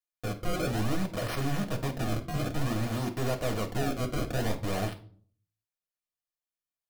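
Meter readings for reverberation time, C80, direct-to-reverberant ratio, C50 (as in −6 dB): 0.45 s, 18.5 dB, 3.0 dB, 12.5 dB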